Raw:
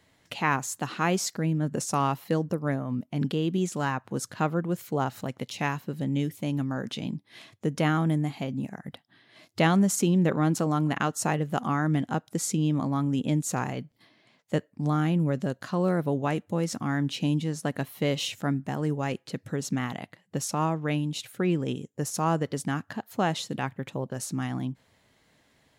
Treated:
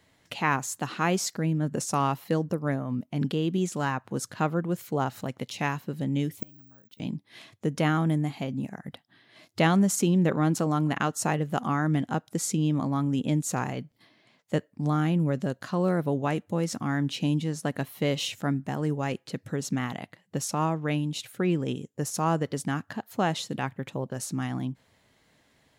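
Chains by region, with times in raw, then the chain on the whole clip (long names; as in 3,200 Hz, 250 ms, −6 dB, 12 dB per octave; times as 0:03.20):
0:06.38–0:07.00: low-shelf EQ 110 Hz +7.5 dB + gate with flip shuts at −23 dBFS, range −29 dB + bad sample-rate conversion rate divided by 2×, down filtered, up zero stuff
whole clip: no processing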